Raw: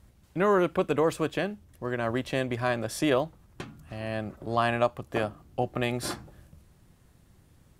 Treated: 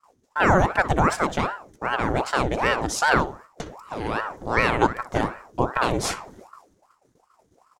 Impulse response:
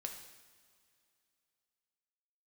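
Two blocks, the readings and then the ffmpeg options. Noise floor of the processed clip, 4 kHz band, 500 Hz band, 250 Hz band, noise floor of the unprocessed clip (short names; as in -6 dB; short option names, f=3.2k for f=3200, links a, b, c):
-66 dBFS, +5.5 dB, +1.5 dB, +3.0 dB, -60 dBFS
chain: -filter_complex "[0:a]equalizer=f=125:t=o:w=0.33:g=6,equalizer=f=2.5k:t=o:w=0.33:g=-7,equalizer=f=6.3k:t=o:w=0.33:g=11,equalizer=f=12.5k:t=o:w=0.33:g=-7,agate=range=-33dB:threshold=-48dB:ratio=3:detection=peak,asplit=2[a][b];[b]adelay=62,lowpass=f=2.7k:p=1,volume=-13dB,asplit=2[c][d];[d]adelay=62,lowpass=f=2.7k:p=1,volume=0.39,asplit=2[e][f];[f]adelay=62,lowpass=f=2.7k:p=1,volume=0.39,asplit=2[g][h];[h]adelay=62,lowpass=f=2.7k:p=1,volume=0.39[i];[a][c][e][g][i]amix=inputs=5:normalize=0,aeval=exprs='val(0)*sin(2*PI*700*n/s+700*0.75/2.6*sin(2*PI*2.6*n/s))':c=same,volume=7.5dB"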